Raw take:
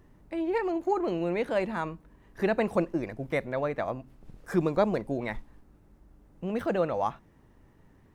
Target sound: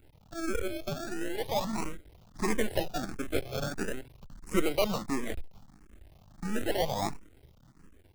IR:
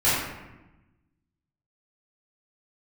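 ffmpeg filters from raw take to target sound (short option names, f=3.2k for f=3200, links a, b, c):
-filter_complex "[0:a]equalizer=f=830:w=0.35:g=-5.5,acrossover=split=3000[a][b];[a]acrusher=samples=36:mix=1:aa=0.000001:lfo=1:lforange=21.6:lforate=0.37[c];[c][b]amix=inputs=2:normalize=0,asettb=1/sr,asplit=3[d][e][f];[d]atrim=end=0.654[g];[e]atrim=start=0.65:end=1.43,asetpts=PTS-STARTPTS,afade=t=in:d=0.004:c=qsin,afade=t=out:st=0.776:d=0.004:c=qsin,acompressor=threshold=-32dB:ratio=6[h];[f]atrim=start=1.426[i];[g][h]acrossfade=d=0.004:c1=hsin:c2=qsin[j];[j][i]acrossfade=d=0.004:c1=qsin:c2=hsin,asplit=2[k][l];[l]asoftclip=type=tanh:threshold=-27.5dB,volume=-4dB[m];[k][m]amix=inputs=2:normalize=0,dynaudnorm=f=350:g=5:m=3dB,aeval=exprs='max(val(0),0)':c=same,asplit=2[n][o];[o]afreqshift=1.5[p];[n][p]amix=inputs=2:normalize=1,volume=3dB"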